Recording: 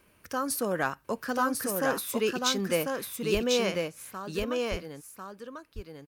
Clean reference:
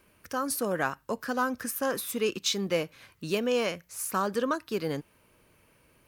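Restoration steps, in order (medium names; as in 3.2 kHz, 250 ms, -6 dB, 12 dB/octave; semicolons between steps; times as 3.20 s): clip repair -15 dBFS; de-plosive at 3.33/4.70 s; inverse comb 1046 ms -3.5 dB; trim 0 dB, from 3.88 s +11 dB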